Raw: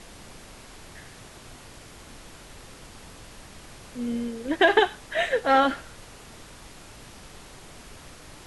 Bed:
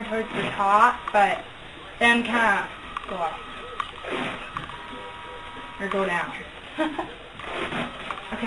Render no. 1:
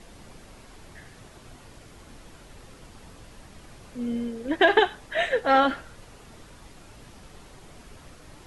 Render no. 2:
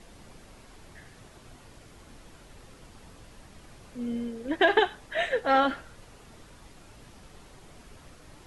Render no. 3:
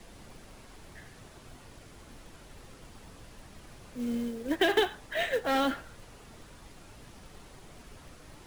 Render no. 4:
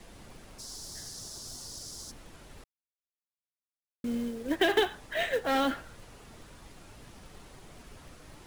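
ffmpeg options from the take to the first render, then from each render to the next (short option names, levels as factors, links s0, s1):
-af "afftdn=nr=6:nf=-47"
-af "volume=0.708"
-filter_complex "[0:a]acrossover=split=320|420|2100[s0][s1][s2][s3];[s2]asoftclip=type=tanh:threshold=0.0335[s4];[s0][s1][s4][s3]amix=inputs=4:normalize=0,acrusher=bits=5:mode=log:mix=0:aa=0.000001"
-filter_complex "[0:a]asplit=3[s0][s1][s2];[s0]afade=t=out:st=0.58:d=0.02[s3];[s1]highshelf=f=3600:t=q:w=3:g=13.5,afade=t=in:st=0.58:d=0.02,afade=t=out:st=2.1:d=0.02[s4];[s2]afade=t=in:st=2.1:d=0.02[s5];[s3][s4][s5]amix=inputs=3:normalize=0,asplit=3[s6][s7][s8];[s6]atrim=end=2.64,asetpts=PTS-STARTPTS,afade=t=out:st=2.636:d=0.004:c=hsin[s9];[s7]atrim=start=2.64:end=4.04,asetpts=PTS-STARTPTS,volume=0[s10];[s8]atrim=start=4.04,asetpts=PTS-STARTPTS,afade=t=in:d=0.004:c=hsin[s11];[s9][s10][s11]concat=n=3:v=0:a=1"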